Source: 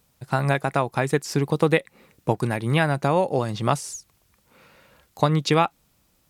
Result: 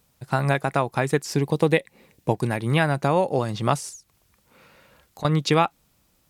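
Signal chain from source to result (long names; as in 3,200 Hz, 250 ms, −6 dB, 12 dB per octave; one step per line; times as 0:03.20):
0:01.32–0:02.49: parametric band 1,300 Hz −8.5 dB 0.36 octaves
0:03.89–0:05.25: downward compressor 2.5 to 1, threshold −43 dBFS, peak gain reduction 18.5 dB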